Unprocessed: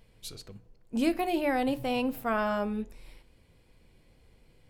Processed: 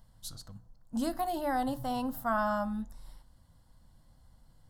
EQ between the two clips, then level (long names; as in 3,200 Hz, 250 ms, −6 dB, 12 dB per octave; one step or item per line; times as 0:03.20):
phaser with its sweep stopped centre 1,000 Hz, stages 4
+1.5 dB